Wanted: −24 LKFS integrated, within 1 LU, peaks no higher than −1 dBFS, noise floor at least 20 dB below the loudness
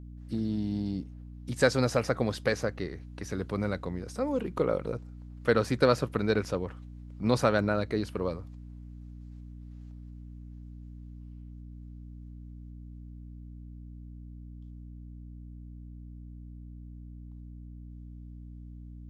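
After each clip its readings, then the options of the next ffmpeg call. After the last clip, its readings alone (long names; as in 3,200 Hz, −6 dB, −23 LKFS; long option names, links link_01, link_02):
mains hum 60 Hz; hum harmonics up to 300 Hz; level of the hum −42 dBFS; integrated loudness −30.0 LKFS; sample peak −8.5 dBFS; target loudness −24.0 LKFS
→ -af "bandreject=frequency=60:width_type=h:width=4,bandreject=frequency=120:width_type=h:width=4,bandreject=frequency=180:width_type=h:width=4,bandreject=frequency=240:width_type=h:width=4,bandreject=frequency=300:width_type=h:width=4"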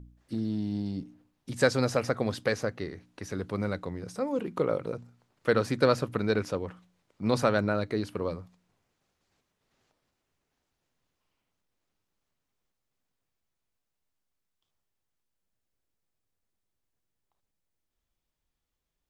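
mains hum none found; integrated loudness −30.0 LKFS; sample peak −8.5 dBFS; target loudness −24.0 LKFS
→ -af "volume=6dB"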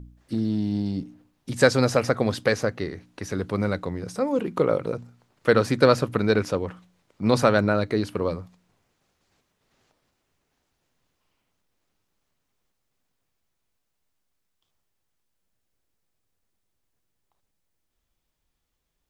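integrated loudness −24.0 LKFS; sample peak −2.5 dBFS; background noise floor −77 dBFS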